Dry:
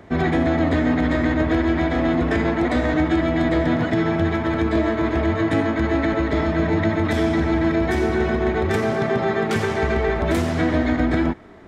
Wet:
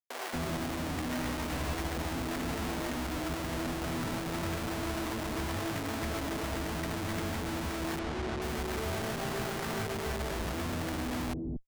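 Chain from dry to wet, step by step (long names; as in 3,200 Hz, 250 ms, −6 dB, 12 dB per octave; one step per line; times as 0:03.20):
brickwall limiter −18.5 dBFS, peak gain reduction 9.5 dB
comparator with hysteresis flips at −33.5 dBFS
0:01.21–0:01.84: double-tracking delay 14 ms −5 dB
0:07.99–0:08.42: high-frequency loss of the air 89 metres
multiband delay without the direct sound highs, lows 230 ms, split 430 Hz
level −7.5 dB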